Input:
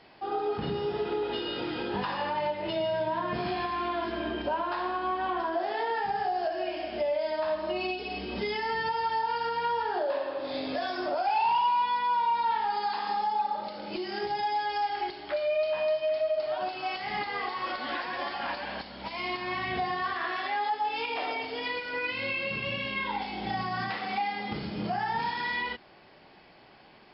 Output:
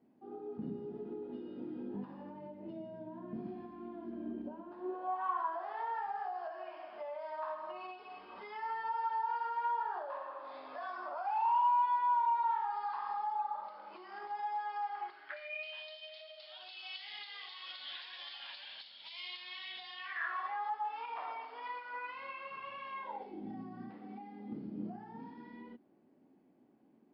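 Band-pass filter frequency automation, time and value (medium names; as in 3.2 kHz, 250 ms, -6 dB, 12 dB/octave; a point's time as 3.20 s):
band-pass filter, Q 4.1
4.76 s 240 Hz
5.24 s 1.1 kHz
15.03 s 1.1 kHz
15.84 s 3.5 kHz
19.92 s 3.5 kHz
20.40 s 1.1 kHz
22.92 s 1.1 kHz
23.44 s 260 Hz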